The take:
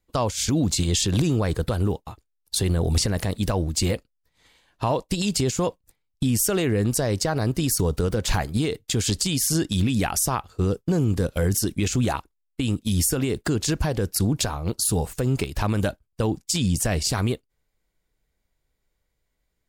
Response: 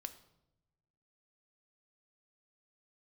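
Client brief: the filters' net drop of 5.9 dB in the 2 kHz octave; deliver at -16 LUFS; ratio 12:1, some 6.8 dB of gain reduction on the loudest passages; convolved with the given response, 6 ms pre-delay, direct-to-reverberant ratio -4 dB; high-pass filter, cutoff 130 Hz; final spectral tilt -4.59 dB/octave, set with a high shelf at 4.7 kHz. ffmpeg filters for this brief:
-filter_complex "[0:a]highpass=130,equalizer=f=2000:t=o:g=-7.5,highshelf=f=4700:g=-4,acompressor=threshold=0.0501:ratio=12,asplit=2[s0][s1];[1:a]atrim=start_sample=2205,adelay=6[s2];[s1][s2]afir=irnorm=-1:irlink=0,volume=2.37[s3];[s0][s3]amix=inputs=2:normalize=0,volume=3.16"

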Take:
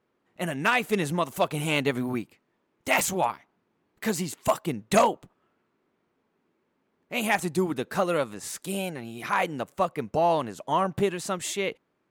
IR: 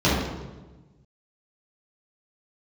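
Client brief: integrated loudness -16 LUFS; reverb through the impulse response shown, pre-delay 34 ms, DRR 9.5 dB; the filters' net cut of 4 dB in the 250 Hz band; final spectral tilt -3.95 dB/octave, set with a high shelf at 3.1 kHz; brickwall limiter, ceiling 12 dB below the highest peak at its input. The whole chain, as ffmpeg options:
-filter_complex "[0:a]equalizer=f=250:t=o:g=-6,highshelf=f=3100:g=9,alimiter=limit=0.141:level=0:latency=1,asplit=2[s0][s1];[1:a]atrim=start_sample=2205,adelay=34[s2];[s1][s2]afir=irnorm=-1:irlink=0,volume=0.0355[s3];[s0][s3]amix=inputs=2:normalize=0,volume=4.22"

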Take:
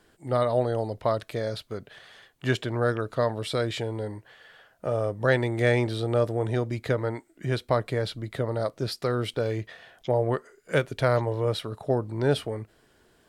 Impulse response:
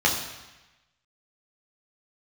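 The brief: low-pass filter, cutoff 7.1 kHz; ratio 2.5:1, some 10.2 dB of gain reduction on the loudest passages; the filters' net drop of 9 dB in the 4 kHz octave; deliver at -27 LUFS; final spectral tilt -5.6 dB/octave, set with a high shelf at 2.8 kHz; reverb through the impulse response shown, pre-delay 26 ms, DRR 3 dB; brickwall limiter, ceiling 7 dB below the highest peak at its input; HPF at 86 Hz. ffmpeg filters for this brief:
-filter_complex "[0:a]highpass=86,lowpass=7100,highshelf=f=2800:g=-4.5,equalizer=f=4000:t=o:g=-7.5,acompressor=threshold=0.02:ratio=2.5,alimiter=limit=0.0631:level=0:latency=1,asplit=2[s0][s1];[1:a]atrim=start_sample=2205,adelay=26[s2];[s1][s2]afir=irnorm=-1:irlink=0,volume=0.119[s3];[s0][s3]amix=inputs=2:normalize=0,volume=2.82"

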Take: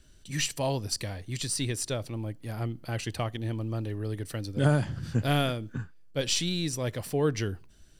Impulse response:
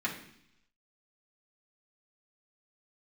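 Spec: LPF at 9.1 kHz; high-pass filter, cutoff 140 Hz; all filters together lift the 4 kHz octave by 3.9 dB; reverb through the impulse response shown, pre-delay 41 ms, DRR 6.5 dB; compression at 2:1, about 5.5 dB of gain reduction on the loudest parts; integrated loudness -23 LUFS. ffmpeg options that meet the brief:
-filter_complex "[0:a]highpass=140,lowpass=9100,equalizer=f=4000:t=o:g=5,acompressor=threshold=0.0316:ratio=2,asplit=2[s0][s1];[1:a]atrim=start_sample=2205,adelay=41[s2];[s1][s2]afir=irnorm=-1:irlink=0,volume=0.224[s3];[s0][s3]amix=inputs=2:normalize=0,volume=3.35"

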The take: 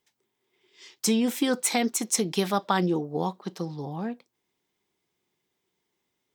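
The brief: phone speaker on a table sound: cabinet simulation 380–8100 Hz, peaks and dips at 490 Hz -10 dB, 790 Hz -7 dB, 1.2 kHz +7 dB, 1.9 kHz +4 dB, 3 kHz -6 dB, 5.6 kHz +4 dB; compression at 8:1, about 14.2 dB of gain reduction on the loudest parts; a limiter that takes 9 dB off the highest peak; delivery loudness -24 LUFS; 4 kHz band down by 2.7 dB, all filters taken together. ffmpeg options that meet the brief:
-af "equalizer=f=4000:t=o:g=-3.5,acompressor=threshold=0.0178:ratio=8,alimiter=level_in=2:limit=0.0631:level=0:latency=1,volume=0.501,highpass=f=380:w=0.5412,highpass=f=380:w=1.3066,equalizer=f=490:t=q:w=4:g=-10,equalizer=f=790:t=q:w=4:g=-7,equalizer=f=1200:t=q:w=4:g=7,equalizer=f=1900:t=q:w=4:g=4,equalizer=f=3000:t=q:w=4:g=-6,equalizer=f=5600:t=q:w=4:g=4,lowpass=f=8100:w=0.5412,lowpass=f=8100:w=1.3066,volume=13.3"

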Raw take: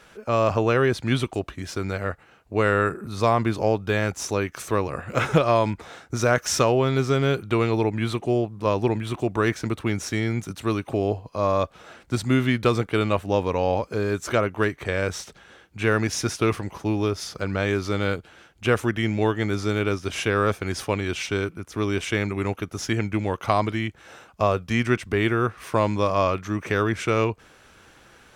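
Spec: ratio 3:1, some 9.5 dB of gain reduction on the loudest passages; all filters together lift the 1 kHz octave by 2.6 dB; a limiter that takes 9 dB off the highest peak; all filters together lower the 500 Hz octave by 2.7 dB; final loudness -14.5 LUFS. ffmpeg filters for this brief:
-af "equalizer=f=500:t=o:g=-4.5,equalizer=f=1000:t=o:g=4.5,acompressor=threshold=0.0398:ratio=3,volume=8.41,alimiter=limit=0.794:level=0:latency=1"

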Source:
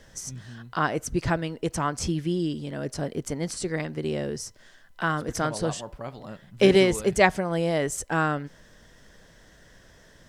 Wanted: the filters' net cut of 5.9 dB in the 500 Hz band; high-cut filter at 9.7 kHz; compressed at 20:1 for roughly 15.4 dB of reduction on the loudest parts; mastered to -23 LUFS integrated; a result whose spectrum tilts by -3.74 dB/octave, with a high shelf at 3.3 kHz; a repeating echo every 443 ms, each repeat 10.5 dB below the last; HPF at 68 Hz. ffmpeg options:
-af "highpass=68,lowpass=9700,equalizer=f=500:t=o:g=-8.5,highshelf=f=3300:g=4.5,acompressor=threshold=0.0282:ratio=20,aecho=1:1:443|886|1329:0.299|0.0896|0.0269,volume=4.73"

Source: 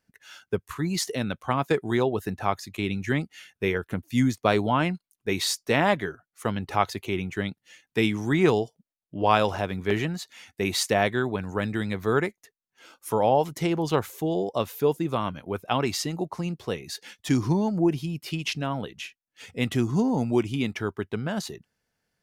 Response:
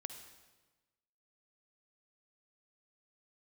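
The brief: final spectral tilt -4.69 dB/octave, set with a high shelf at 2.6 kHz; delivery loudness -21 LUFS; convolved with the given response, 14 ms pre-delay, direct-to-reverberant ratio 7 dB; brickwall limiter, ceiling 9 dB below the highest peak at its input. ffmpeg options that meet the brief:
-filter_complex "[0:a]highshelf=f=2600:g=4,alimiter=limit=0.211:level=0:latency=1,asplit=2[s0][s1];[1:a]atrim=start_sample=2205,adelay=14[s2];[s1][s2]afir=irnorm=-1:irlink=0,volume=0.631[s3];[s0][s3]amix=inputs=2:normalize=0,volume=2"

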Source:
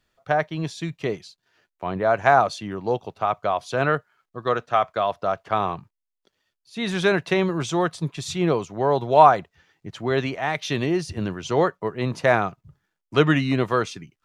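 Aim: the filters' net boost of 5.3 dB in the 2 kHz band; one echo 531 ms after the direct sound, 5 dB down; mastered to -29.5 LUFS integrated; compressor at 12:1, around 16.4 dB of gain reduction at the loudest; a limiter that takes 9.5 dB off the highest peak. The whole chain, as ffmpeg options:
-af "equalizer=f=2000:t=o:g=7,acompressor=threshold=0.0708:ratio=12,alimiter=limit=0.133:level=0:latency=1,aecho=1:1:531:0.562,volume=1.06"

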